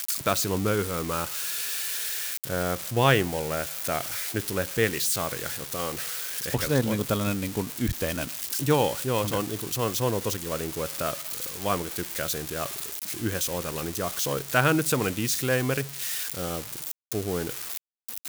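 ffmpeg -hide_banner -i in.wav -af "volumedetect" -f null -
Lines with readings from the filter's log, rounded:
mean_volume: -28.1 dB
max_volume: -5.8 dB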